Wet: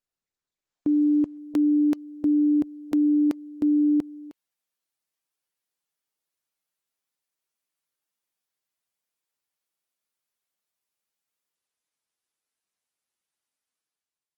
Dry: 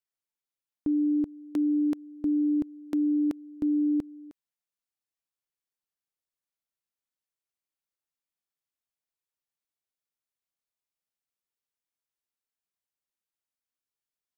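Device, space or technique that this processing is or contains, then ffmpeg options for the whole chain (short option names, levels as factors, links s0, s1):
video call: -af "highpass=f=170:p=1,dynaudnorm=f=170:g=7:m=3.76,volume=0.531" -ar 48000 -c:a libopus -b:a 20k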